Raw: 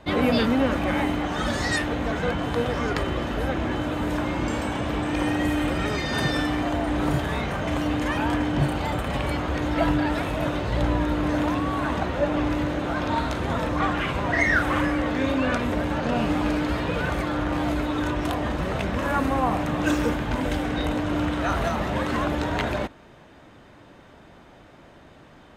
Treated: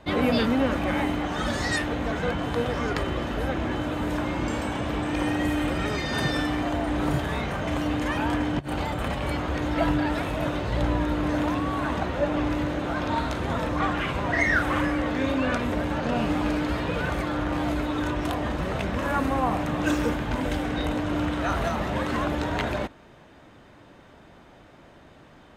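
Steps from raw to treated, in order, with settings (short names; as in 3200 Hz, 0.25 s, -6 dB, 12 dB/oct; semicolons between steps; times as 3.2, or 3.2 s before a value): 8.59–9.26 negative-ratio compressor -27 dBFS, ratio -0.5; gain -1.5 dB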